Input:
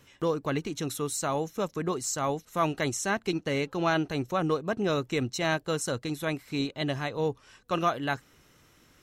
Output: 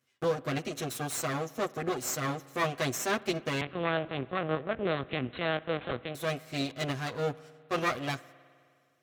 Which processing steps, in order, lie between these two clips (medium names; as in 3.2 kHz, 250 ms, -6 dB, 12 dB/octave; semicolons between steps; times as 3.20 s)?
comb filter that takes the minimum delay 8 ms; 3.61–6.15 s: LPC vocoder at 8 kHz pitch kept; high-pass 66 Hz; gate -50 dBFS, range -16 dB; bass shelf 120 Hz -7.5 dB; band-stop 910 Hz, Q 6.8; spring tank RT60 2.2 s, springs 51 ms, chirp 55 ms, DRR 19.5 dB